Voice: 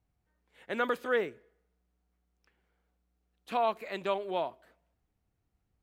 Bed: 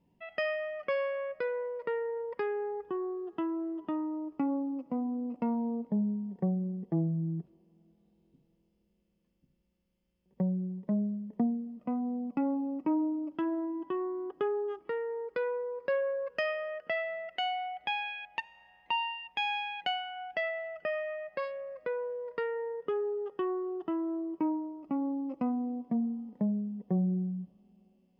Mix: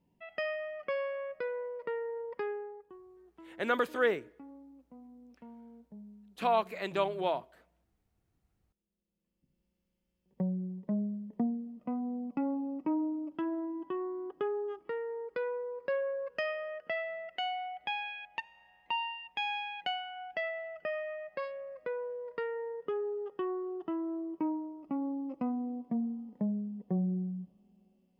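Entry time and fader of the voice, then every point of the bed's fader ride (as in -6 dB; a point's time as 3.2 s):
2.90 s, +1.0 dB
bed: 2.5 s -3 dB
3.03 s -20 dB
8.61 s -20 dB
9.61 s -2.5 dB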